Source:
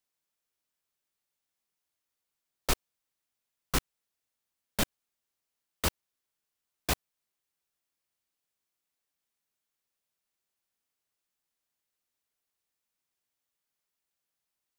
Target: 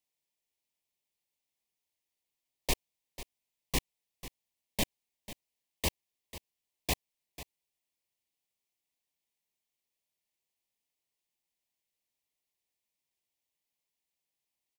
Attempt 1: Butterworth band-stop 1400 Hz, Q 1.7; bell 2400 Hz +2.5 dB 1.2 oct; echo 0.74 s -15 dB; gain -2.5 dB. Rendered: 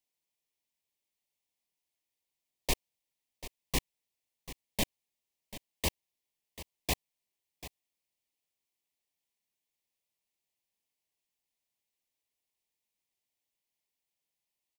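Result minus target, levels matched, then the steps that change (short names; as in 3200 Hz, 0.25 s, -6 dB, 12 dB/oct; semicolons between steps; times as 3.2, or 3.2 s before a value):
echo 0.246 s late
change: echo 0.494 s -15 dB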